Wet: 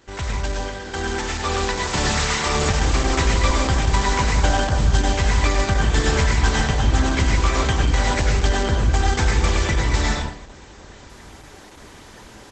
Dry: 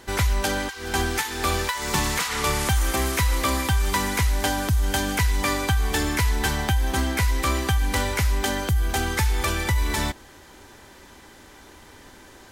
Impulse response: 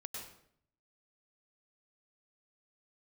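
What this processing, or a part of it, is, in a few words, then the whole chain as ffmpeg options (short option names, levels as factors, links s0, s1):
speakerphone in a meeting room: -filter_complex "[0:a]asplit=2[s0][s1];[s1]adelay=1341,volume=0.0398,highshelf=f=4000:g=-30.2[s2];[s0][s2]amix=inputs=2:normalize=0[s3];[1:a]atrim=start_sample=2205[s4];[s3][s4]afir=irnorm=-1:irlink=0,asplit=2[s5][s6];[s6]adelay=130,highpass=300,lowpass=3400,asoftclip=type=hard:threshold=0.106,volume=0.0708[s7];[s5][s7]amix=inputs=2:normalize=0,dynaudnorm=f=560:g=5:m=2.51" -ar 48000 -c:a libopus -b:a 12k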